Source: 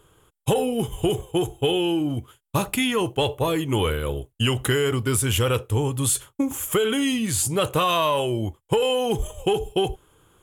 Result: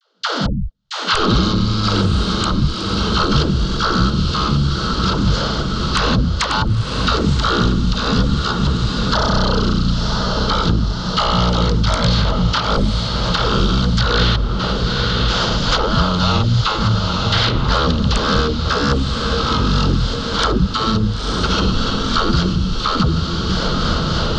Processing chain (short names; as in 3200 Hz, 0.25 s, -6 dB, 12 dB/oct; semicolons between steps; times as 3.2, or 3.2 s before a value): per-bin compression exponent 0.4; bell 500 Hz -4 dB 1.9 oct; notch 370 Hz, Q 12; in parallel at +1.5 dB: level quantiser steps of 20 dB; on the sum: wrapped overs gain 0.5 dB; rotary speaker horn 1.2 Hz, later 8 Hz, at 5.68; step gate ".x..xxxxx" 154 bpm -60 dB; dispersion lows, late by 99 ms, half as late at 620 Hz; vibrato 1.4 Hz 44 cents; speed mistake 78 rpm record played at 33 rpm; on a send: diffused feedback echo 0.951 s, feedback 53%, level -11 dB; on the sum: three-band squash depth 100%